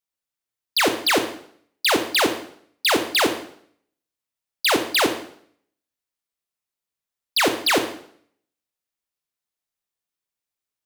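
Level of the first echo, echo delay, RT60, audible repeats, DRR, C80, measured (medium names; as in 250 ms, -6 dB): no echo, no echo, 0.60 s, no echo, 6.0 dB, 12.5 dB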